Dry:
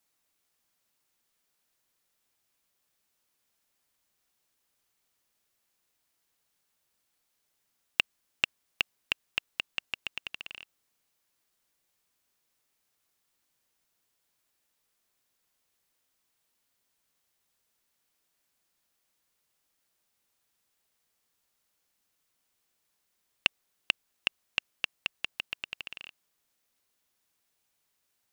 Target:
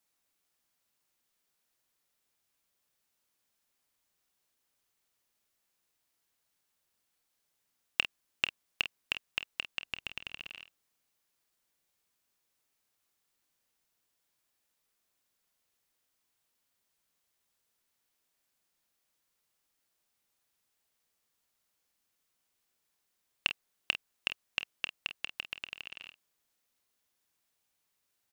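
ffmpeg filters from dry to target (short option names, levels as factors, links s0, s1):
-filter_complex "[0:a]asettb=1/sr,asplit=3[s0][s1][s2];[s0]atrim=end=9.834[s3];[s1]atrim=start=9.83:end=10.48,asetpts=PTS-STARTPTS,afade=t=in:d=0.004:c=qsin,afade=t=out:st=0.646:d=0.004:c=qsin,lowshelf=f=230:g=8[s4];[s2]atrim=start=10.476[s5];[s3][s4]acrossfade=d=0.004:c1=hsin:c2=qsin[s6];[s6][s5]acrossfade=d=0.004:c1=qsin:c2=hsin,aecho=1:1:28|49:0.15|0.282,volume=0.708"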